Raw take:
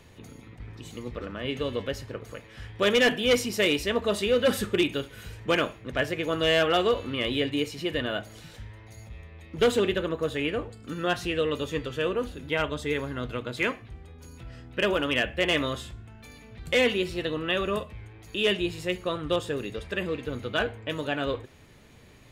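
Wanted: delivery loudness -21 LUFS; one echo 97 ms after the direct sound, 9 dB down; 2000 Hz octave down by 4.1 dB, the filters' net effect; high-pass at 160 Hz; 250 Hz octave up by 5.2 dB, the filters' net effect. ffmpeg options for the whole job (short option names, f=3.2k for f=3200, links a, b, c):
-af "highpass=160,equalizer=f=250:t=o:g=7.5,equalizer=f=2k:t=o:g=-5.5,aecho=1:1:97:0.355,volume=5dB"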